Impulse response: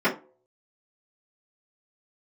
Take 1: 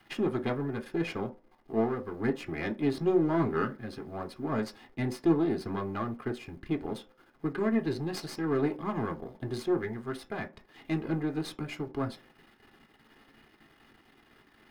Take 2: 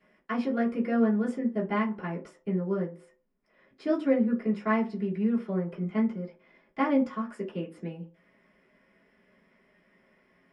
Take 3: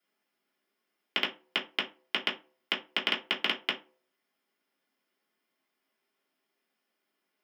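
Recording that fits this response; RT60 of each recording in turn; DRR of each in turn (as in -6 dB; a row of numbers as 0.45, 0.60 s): 2; not exponential, not exponential, not exponential; 4.5, -13.0, -5.5 dB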